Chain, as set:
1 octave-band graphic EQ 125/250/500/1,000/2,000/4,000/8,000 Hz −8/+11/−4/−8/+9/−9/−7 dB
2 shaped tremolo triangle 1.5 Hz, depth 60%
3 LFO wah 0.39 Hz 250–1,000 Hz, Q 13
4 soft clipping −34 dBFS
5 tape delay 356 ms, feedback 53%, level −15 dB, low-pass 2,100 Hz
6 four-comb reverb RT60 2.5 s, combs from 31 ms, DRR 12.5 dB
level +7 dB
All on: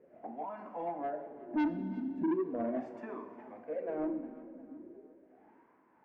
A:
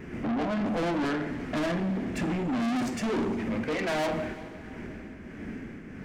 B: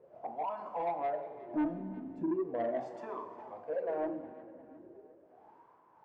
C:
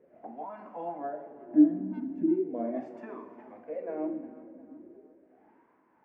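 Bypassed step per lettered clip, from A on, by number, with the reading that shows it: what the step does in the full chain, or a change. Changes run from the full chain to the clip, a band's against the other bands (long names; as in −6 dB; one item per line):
3, 125 Hz band +9.5 dB
1, 1 kHz band +5.0 dB
4, distortion level −4 dB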